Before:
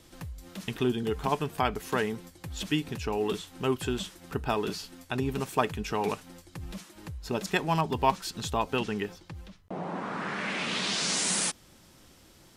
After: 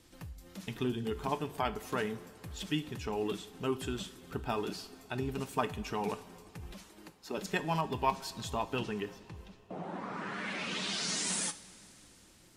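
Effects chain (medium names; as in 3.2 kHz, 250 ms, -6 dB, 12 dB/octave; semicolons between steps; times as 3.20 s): coarse spectral quantiser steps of 15 dB; 6.73–7.38 s: high-pass 220 Hz 24 dB/octave; two-slope reverb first 0.39 s, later 3.8 s, from -16 dB, DRR 10.5 dB; trim -5.5 dB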